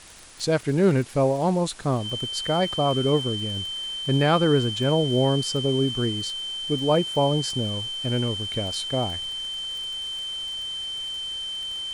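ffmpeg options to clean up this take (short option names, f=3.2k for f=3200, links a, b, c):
-af "adeclick=t=4,bandreject=f=3.1k:w=30,afwtdn=0.0056"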